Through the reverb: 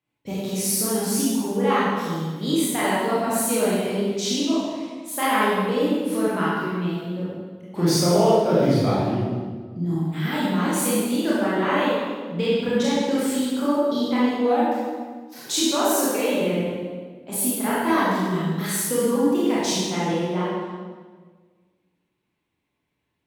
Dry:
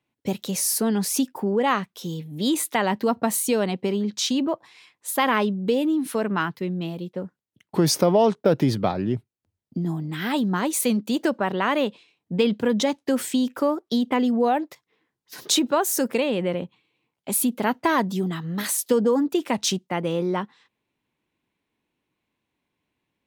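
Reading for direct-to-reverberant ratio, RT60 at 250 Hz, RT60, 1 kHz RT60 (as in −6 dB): −9.5 dB, 1.7 s, 1.5 s, 1.4 s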